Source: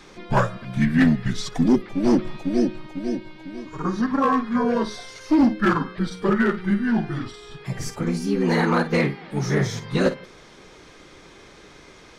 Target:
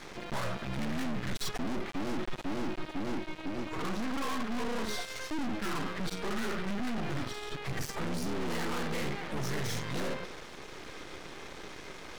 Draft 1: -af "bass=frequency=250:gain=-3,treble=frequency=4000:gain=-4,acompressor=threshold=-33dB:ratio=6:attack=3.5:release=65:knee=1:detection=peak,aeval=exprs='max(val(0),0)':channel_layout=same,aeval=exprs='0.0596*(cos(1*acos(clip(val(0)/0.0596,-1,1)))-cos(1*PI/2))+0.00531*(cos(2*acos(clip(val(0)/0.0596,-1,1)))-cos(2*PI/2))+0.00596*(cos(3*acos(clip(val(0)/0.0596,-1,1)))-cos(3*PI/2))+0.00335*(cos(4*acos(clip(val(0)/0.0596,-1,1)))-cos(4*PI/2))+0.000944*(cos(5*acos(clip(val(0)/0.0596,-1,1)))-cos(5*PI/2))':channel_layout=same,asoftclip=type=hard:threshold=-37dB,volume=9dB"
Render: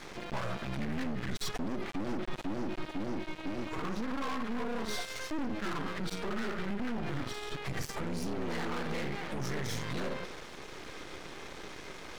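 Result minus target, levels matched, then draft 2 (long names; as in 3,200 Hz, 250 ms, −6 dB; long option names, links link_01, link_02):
downward compressor: peak gain reduction +9 dB
-af "bass=frequency=250:gain=-3,treble=frequency=4000:gain=-4,acompressor=threshold=-22dB:ratio=6:attack=3.5:release=65:knee=1:detection=peak,aeval=exprs='max(val(0),0)':channel_layout=same,aeval=exprs='0.0596*(cos(1*acos(clip(val(0)/0.0596,-1,1)))-cos(1*PI/2))+0.00531*(cos(2*acos(clip(val(0)/0.0596,-1,1)))-cos(2*PI/2))+0.00596*(cos(3*acos(clip(val(0)/0.0596,-1,1)))-cos(3*PI/2))+0.00335*(cos(4*acos(clip(val(0)/0.0596,-1,1)))-cos(4*PI/2))+0.000944*(cos(5*acos(clip(val(0)/0.0596,-1,1)))-cos(5*PI/2))':channel_layout=same,asoftclip=type=hard:threshold=-37dB,volume=9dB"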